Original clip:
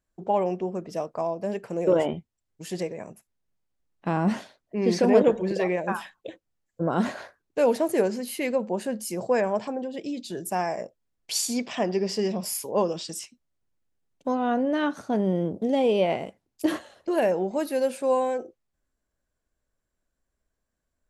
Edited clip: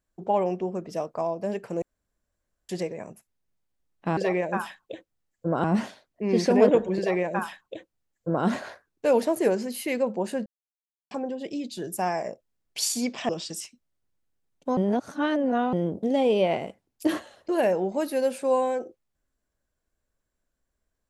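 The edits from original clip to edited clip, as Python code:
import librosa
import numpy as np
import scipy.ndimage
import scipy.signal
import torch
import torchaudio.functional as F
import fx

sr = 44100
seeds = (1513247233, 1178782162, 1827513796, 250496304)

y = fx.edit(x, sr, fx.room_tone_fill(start_s=1.82, length_s=0.87),
    fx.duplicate(start_s=5.52, length_s=1.47, to_s=4.17),
    fx.silence(start_s=8.99, length_s=0.65),
    fx.cut(start_s=11.82, length_s=1.06),
    fx.reverse_span(start_s=14.36, length_s=0.96), tone=tone)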